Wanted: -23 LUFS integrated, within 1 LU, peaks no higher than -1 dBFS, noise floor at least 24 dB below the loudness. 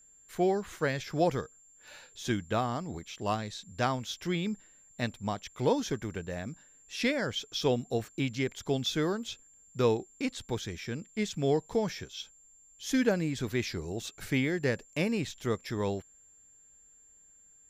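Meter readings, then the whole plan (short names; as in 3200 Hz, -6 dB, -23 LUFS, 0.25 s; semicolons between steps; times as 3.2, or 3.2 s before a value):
steady tone 7300 Hz; tone level -57 dBFS; loudness -32.5 LUFS; peak -13.5 dBFS; loudness target -23.0 LUFS
-> notch 7300 Hz, Q 30; gain +9.5 dB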